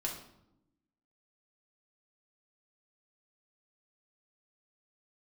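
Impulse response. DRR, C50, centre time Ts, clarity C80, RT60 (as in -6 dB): -2.0 dB, 6.0 dB, 29 ms, 9.5 dB, 0.85 s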